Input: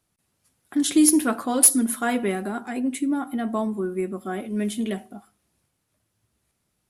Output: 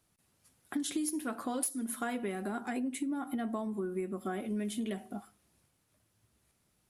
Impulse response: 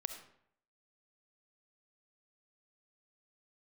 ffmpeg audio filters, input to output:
-af "acompressor=threshold=0.0251:ratio=10"

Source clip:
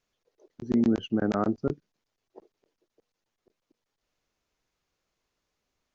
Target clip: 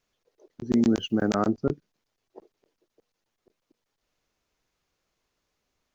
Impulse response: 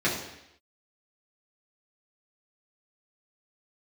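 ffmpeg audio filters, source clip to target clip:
-filter_complex "[0:a]asettb=1/sr,asplit=3[s0][s1][s2];[s0]atrim=end=0.724[s3];[s1]atrim=start=0.72:end=1.49,asetpts=PTS-STARTPTS,afade=t=in:d=0.004:c=qsin,afade=t=out:st=0.766:d=0.004:c=qsin,aemphasis=mode=production:type=75fm[s4];[s2]atrim=start=1.486[s5];[s3][s4]acrossfade=d=0.004:c1=hsin:c2=qsin[s6];[s6][s5]acrossfade=d=0.004:c1=qsin:c2=hsin,volume=1.33"

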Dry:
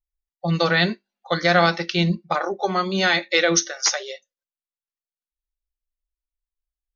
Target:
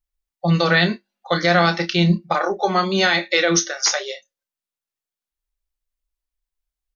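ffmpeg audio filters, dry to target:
-filter_complex "[0:a]alimiter=limit=0.299:level=0:latency=1:release=115,asplit=2[s0][s1];[s1]adelay=29,volume=0.335[s2];[s0][s2]amix=inputs=2:normalize=0,volume=1.58"

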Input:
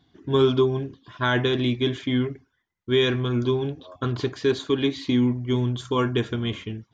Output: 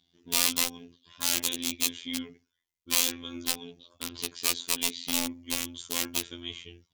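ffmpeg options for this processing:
-af "aeval=exprs='(mod(5.62*val(0)+1,2)-1)/5.62':c=same,afftfilt=real='hypot(re,im)*cos(PI*b)':imag='0':win_size=2048:overlap=0.75,aexciter=amount=5.7:drive=1.5:freq=2300,volume=0.266"

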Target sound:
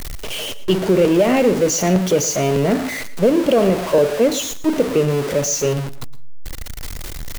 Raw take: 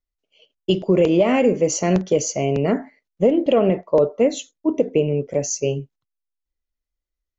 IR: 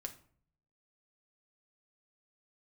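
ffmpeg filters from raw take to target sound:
-filter_complex "[0:a]aeval=exprs='val(0)+0.5*0.0944*sgn(val(0))':c=same,asplit=2[s0][s1];[1:a]atrim=start_sample=2205,adelay=113[s2];[s1][s2]afir=irnorm=-1:irlink=0,volume=0.224[s3];[s0][s3]amix=inputs=2:normalize=0"

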